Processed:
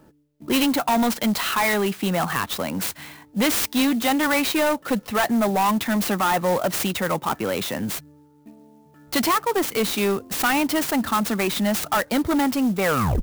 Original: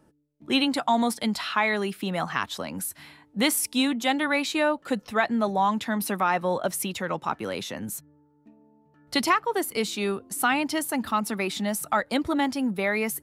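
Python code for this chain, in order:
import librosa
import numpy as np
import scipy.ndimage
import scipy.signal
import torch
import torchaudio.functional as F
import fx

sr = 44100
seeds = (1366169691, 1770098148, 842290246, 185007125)

y = fx.tape_stop_end(x, sr, length_s=0.41)
y = 10.0 ** (-23.5 / 20.0) * np.tanh(y / 10.0 ** (-23.5 / 20.0))
y = fx.clock_jitter(y, sr, seeds[0], jitter_ms=0.034)
y = y * 10.0 ** (8.0 / 20.0)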